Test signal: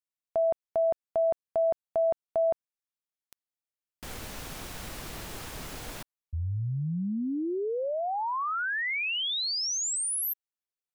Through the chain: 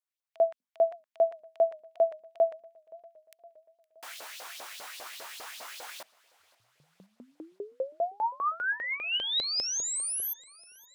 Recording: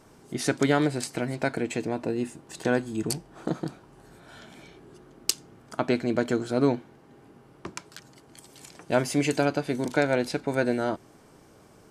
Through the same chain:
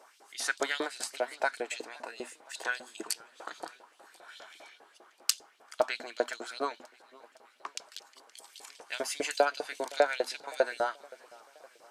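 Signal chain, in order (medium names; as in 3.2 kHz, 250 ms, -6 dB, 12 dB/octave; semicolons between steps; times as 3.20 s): high-pass 160 Hz 24 dB/octave; hum notches 50/100/150/200/250 Hz; dynamic bell 2.2 kHz, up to -5 dB, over -48 dBFS, Q 2.9; LFO high-pass saw up 5 Hz 510–4500 Hz; modulated delay 518 ms, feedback 55%, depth 111 cents, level -23.5 dB; trim -2.5 dB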